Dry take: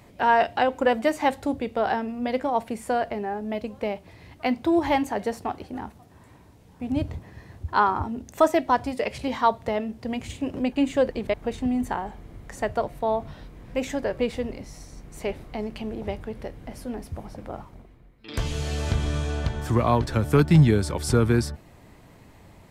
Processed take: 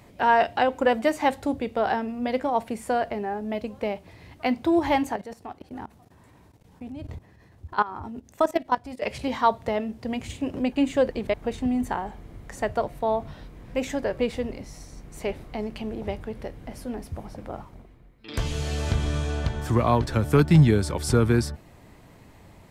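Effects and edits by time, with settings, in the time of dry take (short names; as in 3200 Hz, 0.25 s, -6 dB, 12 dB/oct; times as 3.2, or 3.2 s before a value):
5.16–9.02 level quantiser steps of 18 dB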